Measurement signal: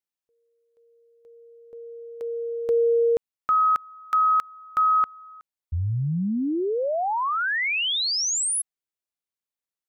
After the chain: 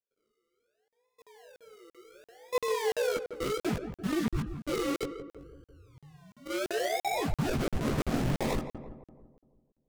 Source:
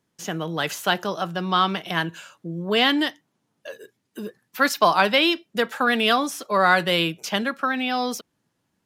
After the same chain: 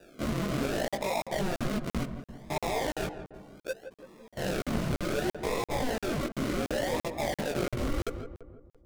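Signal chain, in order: reverse spectral sustain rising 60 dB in 0.98 s; band-stop 2.7 kHz, Q 28; reverb removal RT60 0.64 s; hum notches 50/100/150 Hz; wow and flutter 140 cents; peaking EQ 630 Hz +14.5 dB 0.7 oct; decimation with a swept rate 41×, swing 60% 0.67 Hz; level held to a coarse grid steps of 24 dB; chorus voices 6, 0.52 Hz, delay 18 ms, depth 4.6 ms; filtered feedback delay 167 ms, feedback 54%, low-pass 1.3 kHz, level -9 dB; crackling interface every 0.34 s, samples 2048, zero, from 0.88 s; loudspeaker Doppler distortion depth 0.37 ms; trim -3.5 dB

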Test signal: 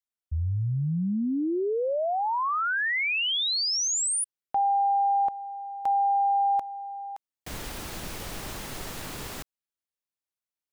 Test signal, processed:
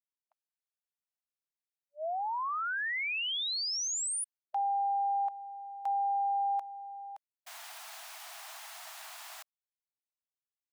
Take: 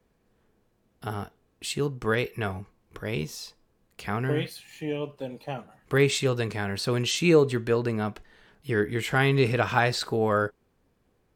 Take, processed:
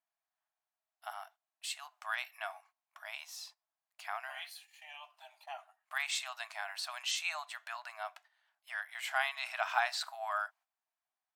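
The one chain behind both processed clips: gate -47 dBFS, range -11 dB; brick-wall FIR high-pass 620 Hz; trim -7 dB

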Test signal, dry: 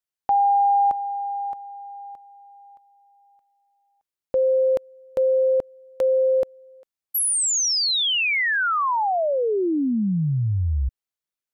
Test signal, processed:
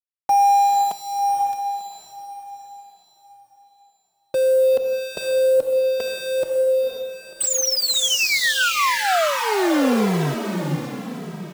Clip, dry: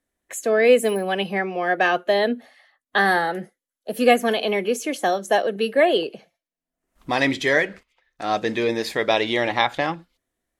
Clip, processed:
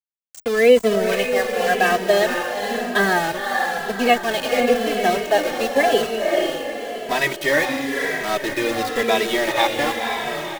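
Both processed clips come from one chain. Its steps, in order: FFT band-pass 130–8300 Hz; small samples zeroed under -24.5 dBFS; echo that smears into a reverb 515 ms, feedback 47%, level -3.5 dB; endless flanger 2.7 ms -0.96 Hz; trim +3.5 dB

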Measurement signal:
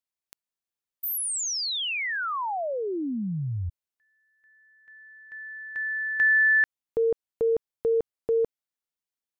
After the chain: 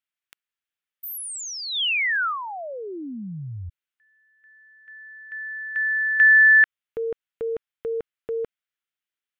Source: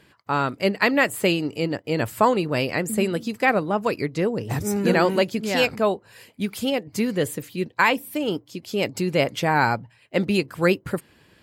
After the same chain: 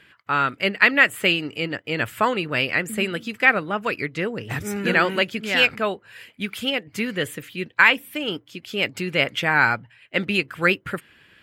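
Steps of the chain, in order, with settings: high-order bell 2.1 kHz +10.5 dB; trim -4 dB

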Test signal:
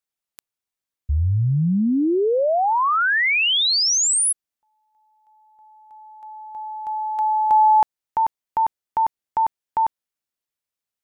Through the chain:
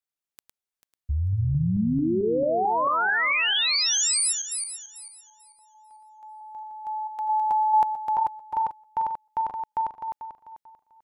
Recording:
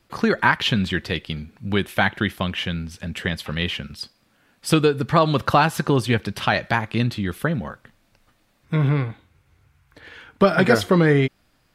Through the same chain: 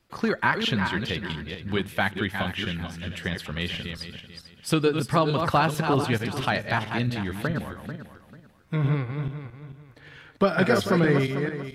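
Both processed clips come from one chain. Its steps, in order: backward echo that repeats 221 ms, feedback 49%, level -6 dB; trim -5.5 dB

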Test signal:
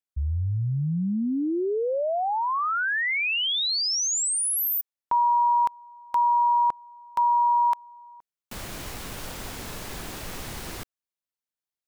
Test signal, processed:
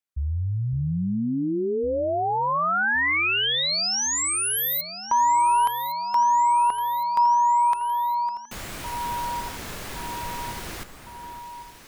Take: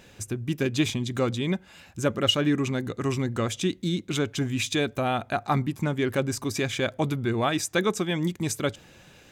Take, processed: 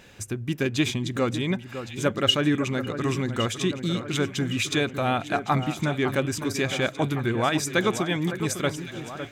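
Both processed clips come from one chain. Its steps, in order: peaking EQ 1.8 kHz +3 dB 1.8 oct; on a send: echo whose repeats swap between lows and highs 556 ms, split 1.9 kHz, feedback 75%, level -10 dB

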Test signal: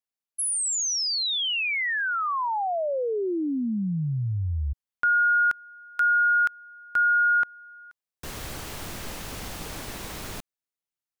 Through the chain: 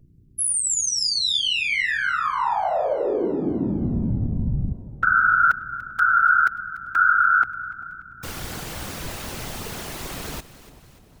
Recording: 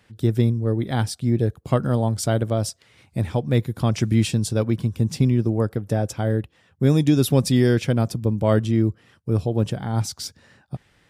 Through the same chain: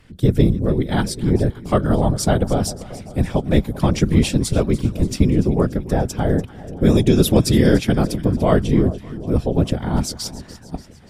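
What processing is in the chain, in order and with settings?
mains buzz 60 Hz, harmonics 5, -56 dBFS -8 dB/octave; whisper effect; two-band feedback delay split 950 Hz, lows 392 ms, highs 291 ms, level -16 dB; trim +3.5 dB

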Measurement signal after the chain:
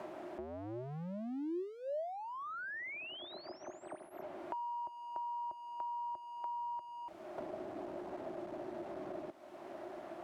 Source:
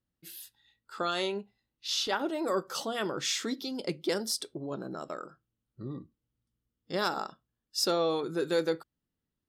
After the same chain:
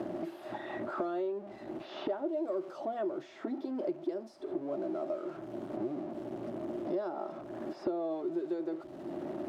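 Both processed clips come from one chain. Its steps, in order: jump at every zero crossing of -33.5 dBFS; two resonant band-passes 470 Hz, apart 0.77 oct; three bands compressed up and down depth 100%; trim +1.5 dB

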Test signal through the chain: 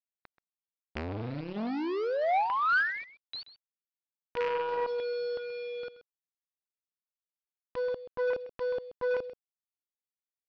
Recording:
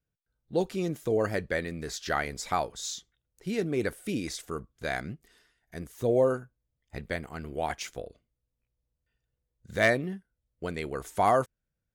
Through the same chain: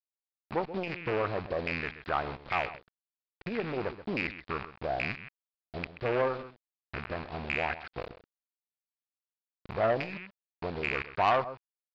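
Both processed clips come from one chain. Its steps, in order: rattle on loud lows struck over -42 dBFS, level -17 dBFS; bass shelf 120 Hz +4.5 dB; in parallel at +2 dB: compression 10:1, threshold -36 dBFS; on the sum: LFO low-pass saw down 1.2 Hz 650–2300 Hz; word length cut 6-bit, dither none; steep low-pass 4.8 kHz 72 dB/octave; on a send: delay 130 ms -15 dB; on the sum: transformer saturation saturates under 1.4 kHz; trim -5.5 dB

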